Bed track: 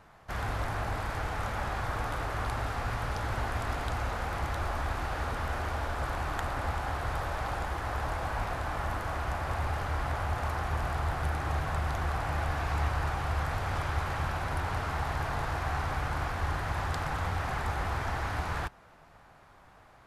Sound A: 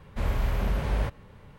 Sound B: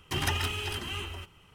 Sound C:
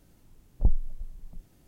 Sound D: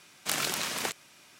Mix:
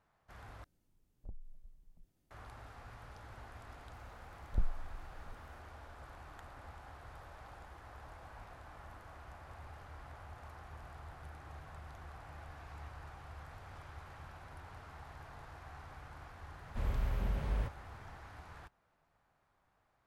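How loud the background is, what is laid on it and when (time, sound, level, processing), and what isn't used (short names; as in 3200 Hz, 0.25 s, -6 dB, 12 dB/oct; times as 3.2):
bed track -19.5 dB
0.64 replace with C -18 dB + compressor, threshold -24 dBFS
3.93 add C -10 dB
16.59 add A -12 dB + low shelf 210 Hz +4.5 dB
not used: B, D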